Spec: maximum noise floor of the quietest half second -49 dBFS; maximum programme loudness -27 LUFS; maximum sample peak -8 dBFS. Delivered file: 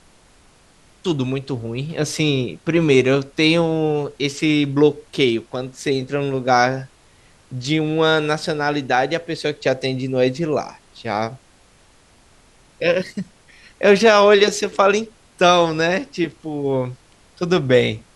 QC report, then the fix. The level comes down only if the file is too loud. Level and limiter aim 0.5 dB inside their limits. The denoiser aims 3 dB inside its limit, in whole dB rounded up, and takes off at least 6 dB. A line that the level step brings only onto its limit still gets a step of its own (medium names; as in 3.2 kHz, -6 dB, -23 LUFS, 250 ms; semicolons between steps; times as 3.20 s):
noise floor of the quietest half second -53 dBFS: pass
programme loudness -19.0 LUFS: fail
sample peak -1.5 dBFS: fail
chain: trim -8.5 dB